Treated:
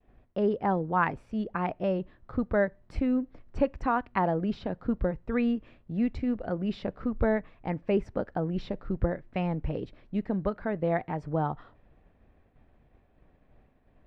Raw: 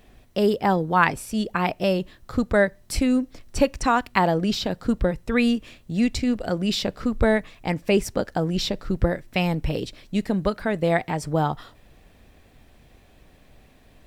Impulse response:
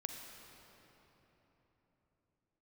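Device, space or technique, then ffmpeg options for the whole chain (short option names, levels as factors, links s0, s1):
hearing-loss simulation: -af "lowpass=1600,agate=range=0.0224:threshold=0.00355:ratio=3:detection=peak,volume=0.501"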